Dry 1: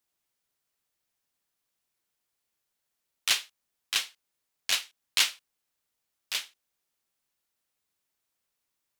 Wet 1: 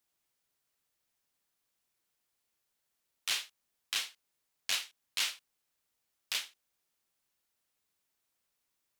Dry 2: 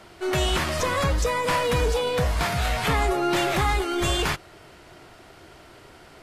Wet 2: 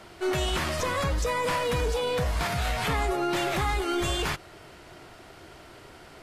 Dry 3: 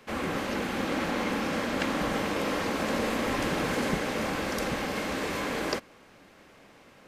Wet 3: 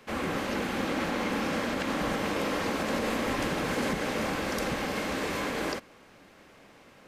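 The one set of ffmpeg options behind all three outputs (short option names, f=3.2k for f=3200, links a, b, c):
-af "alimiter=limit=-19.5dB:level=0:latency=1:release=88"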